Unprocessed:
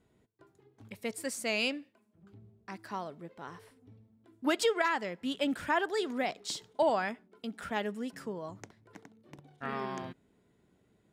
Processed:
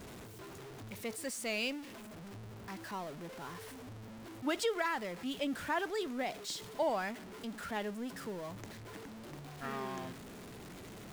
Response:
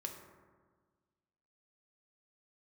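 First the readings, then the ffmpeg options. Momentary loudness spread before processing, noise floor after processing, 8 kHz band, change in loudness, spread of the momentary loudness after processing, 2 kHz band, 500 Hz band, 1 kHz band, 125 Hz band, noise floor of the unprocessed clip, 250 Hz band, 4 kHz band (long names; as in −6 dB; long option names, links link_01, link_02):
18 LU, −49 dBFS, −2.0 dB, −6.0 dB, 15 LU, −4.5 dB, −4.5 dB, −4.5 dB, +2.0 dB, −70 dBFS, −3.5 dB, −4.0 dB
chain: -af "aeval=exprs='val(0)+0.5*0.0133*sgn(val(0))':channel_layout=same,volume=-6dB"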